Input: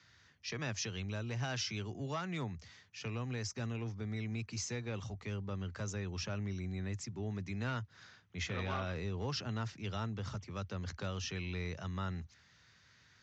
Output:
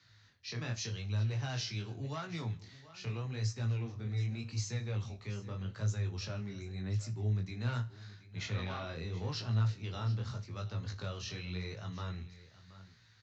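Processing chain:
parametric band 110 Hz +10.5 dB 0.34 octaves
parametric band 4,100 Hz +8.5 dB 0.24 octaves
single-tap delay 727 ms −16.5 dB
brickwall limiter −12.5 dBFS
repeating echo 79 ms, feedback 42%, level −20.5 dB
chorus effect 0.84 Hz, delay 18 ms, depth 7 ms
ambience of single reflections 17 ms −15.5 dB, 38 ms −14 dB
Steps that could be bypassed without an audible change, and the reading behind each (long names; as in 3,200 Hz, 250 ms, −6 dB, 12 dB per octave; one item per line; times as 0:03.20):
brickwall limiter −12.5 dBFS: peak of its input −22.0 dBFS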